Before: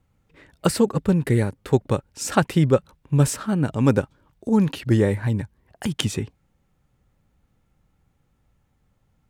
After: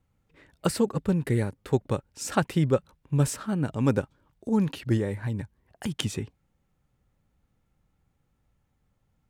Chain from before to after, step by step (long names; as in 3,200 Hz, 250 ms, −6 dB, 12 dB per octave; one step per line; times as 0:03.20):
0:04.97–0:05.39: downward compressor 2 to 1, threshold −22 dBFS, peak gain reduction 5 dB
level −5.5 dB